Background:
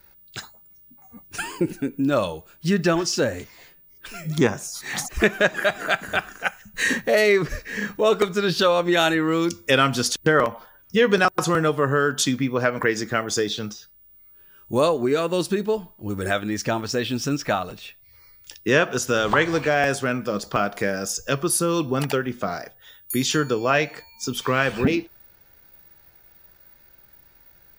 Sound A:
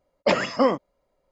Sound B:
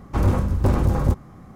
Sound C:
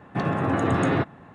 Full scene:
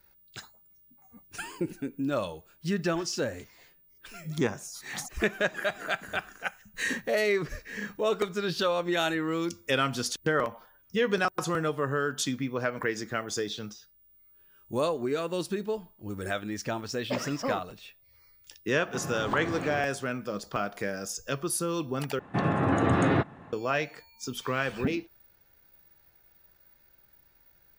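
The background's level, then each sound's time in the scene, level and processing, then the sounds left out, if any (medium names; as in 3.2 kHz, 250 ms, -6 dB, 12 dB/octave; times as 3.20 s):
background -8.5 dB
16.84 s: add A -12.5 dB
18.78 s: add C -13.5 dB + three bands compressed up and down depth 40%
22.19 s: replace with C -1.5 dB
not used: B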